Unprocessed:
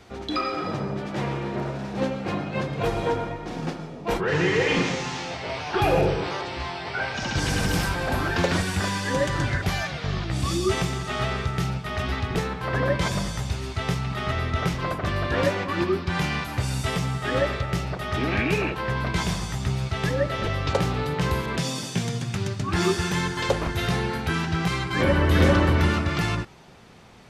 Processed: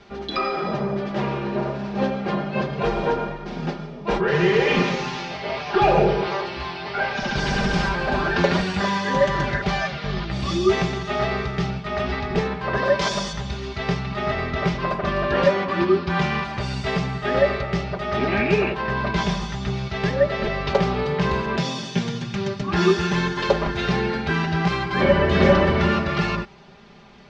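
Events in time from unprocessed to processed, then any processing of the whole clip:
12.77–13.33 s: tone controls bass -8 dB, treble +10 dB
whole clip: low-pass 5.4 kHz 24 dB/octave; comb 5 ms, depth 71%; dynamic bell 610 Hz, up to +4 dB, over -32 dBFS, Q 0.77

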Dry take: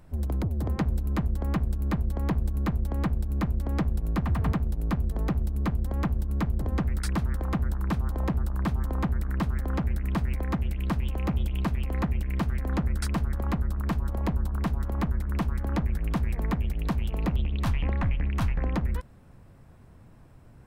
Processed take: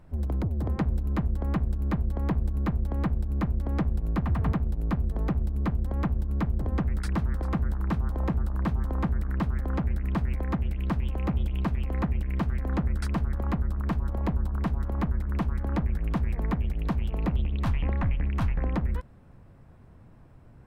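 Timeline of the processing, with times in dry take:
6.51–9.22 s: delay 393 ms -16 dB
whole clip: treble shelf 3.9 kHz -9.5 dB

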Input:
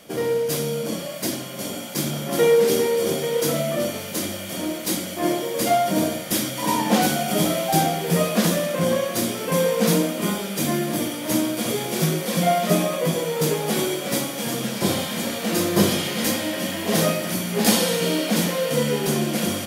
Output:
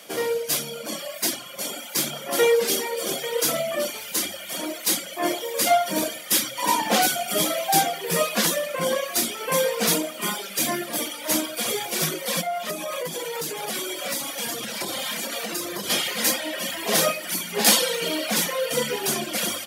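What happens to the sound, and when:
12.41–15.90 s: compression, threshold -23 dBFS
whole clip: high-pass 850 Hz 6 dB/octave; reverb removal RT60 1.6 s; trim +5 dB

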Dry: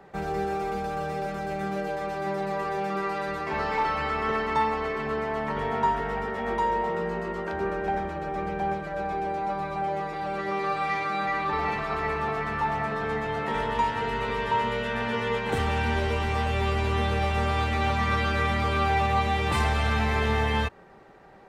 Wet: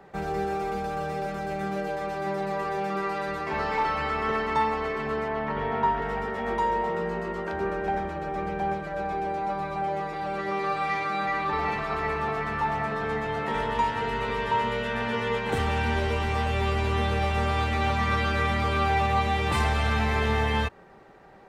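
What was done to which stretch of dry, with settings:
5.28–6.02 s: low-pass 3.8 kHz

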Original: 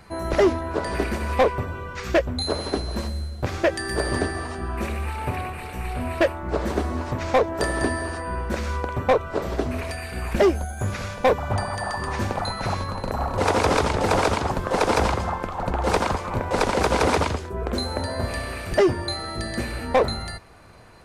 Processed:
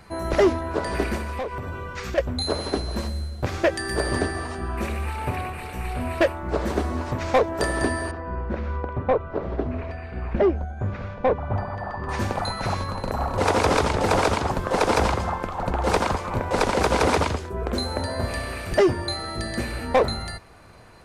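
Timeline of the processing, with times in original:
1.20–2.18 s: compression 12:1, threshold -26 dBFS
8.11–12.09 s: tape spacing loss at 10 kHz 38 dB

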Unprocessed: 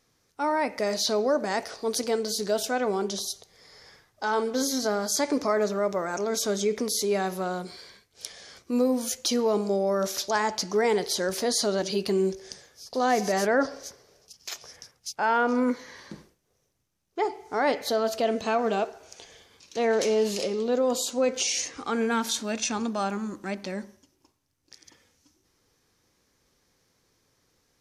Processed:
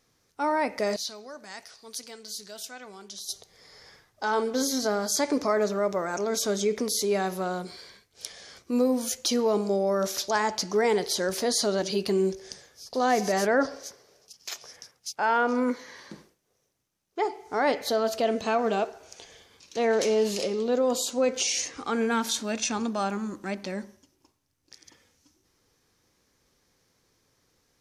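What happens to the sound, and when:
0.96–3.29 s: amplifier tone stack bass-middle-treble 5-5-5
13.76–17.47 s: bass shelf 110 Hz -11 dB

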